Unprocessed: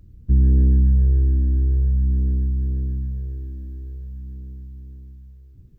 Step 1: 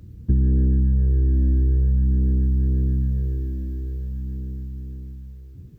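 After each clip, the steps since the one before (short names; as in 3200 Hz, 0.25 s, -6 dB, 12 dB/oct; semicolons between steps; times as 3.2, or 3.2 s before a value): HPF 72 Hz 12 dB/oct; compressor 5:1, threshold -24 dBFS, peak gain reduction 8.5 dB; gain +8.5 dB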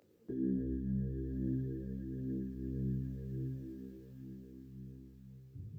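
high-pass sweep 490 Hz -> 110 Hz, 0.22–0.72; de-hum 64.91 Hz, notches 3; detuned doubles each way 18 cents; gain -5.5 dB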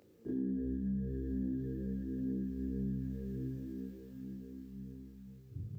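on a send: reverse echo 35 ms -4.5 dB; on the sum: compressor, threshold -35 dBFS, peak gain reduction 6 dB; gain +2.5 dB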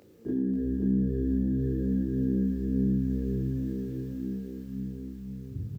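echo 0.536 s -3.5 dB; gain +7.5 dB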